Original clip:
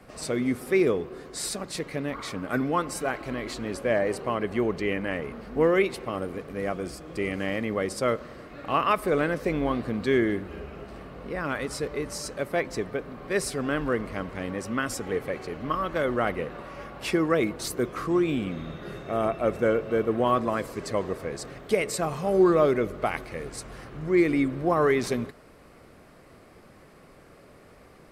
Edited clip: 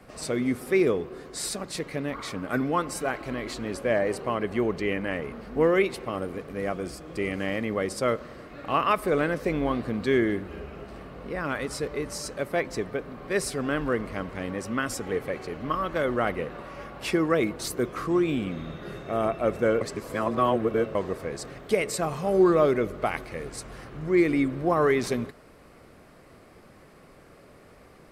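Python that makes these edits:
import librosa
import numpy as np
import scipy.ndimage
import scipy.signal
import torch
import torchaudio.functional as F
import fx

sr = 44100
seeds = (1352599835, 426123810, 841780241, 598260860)

y = fx.edit(x, sr, fx.reverse_span(start_s=19.81, length_s=1.14), tone=tone)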